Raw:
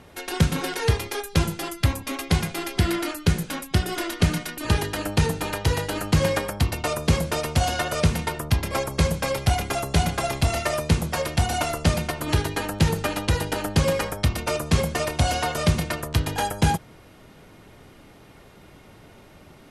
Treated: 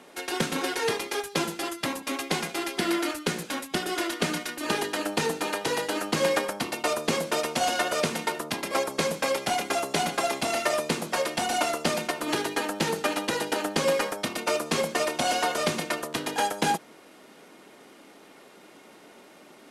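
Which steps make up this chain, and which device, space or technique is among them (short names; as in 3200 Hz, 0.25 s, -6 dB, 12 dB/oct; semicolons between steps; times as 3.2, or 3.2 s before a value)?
early wireless headset (HPF 230 Hz 24 dB/oct; CVSD 64 kbps)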